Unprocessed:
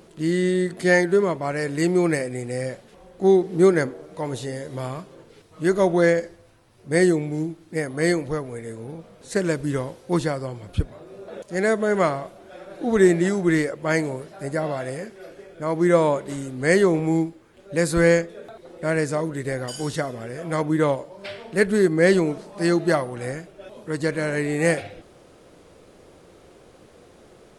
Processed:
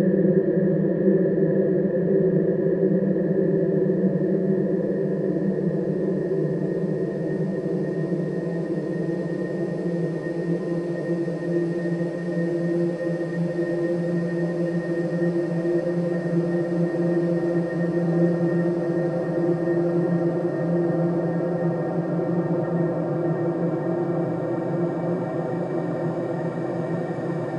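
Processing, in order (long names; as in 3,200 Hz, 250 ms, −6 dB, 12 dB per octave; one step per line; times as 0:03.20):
spectral magnitudes quantised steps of 30 dB
treble cut that deepens with the level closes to 580 Hz, closed at −17 dBFS
extreme stretch with random phases 28×, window 1.00 s, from 0:22.11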